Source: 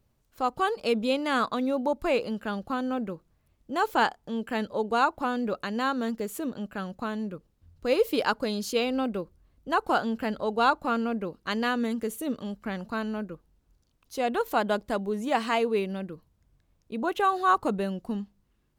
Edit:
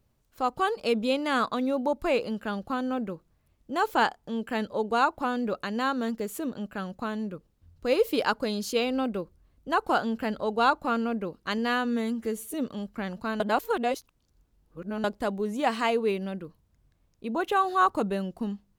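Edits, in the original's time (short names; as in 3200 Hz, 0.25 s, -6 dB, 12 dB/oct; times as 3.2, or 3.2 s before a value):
11.58–12.22 stretch 1.5×
13.08–14.72 reverse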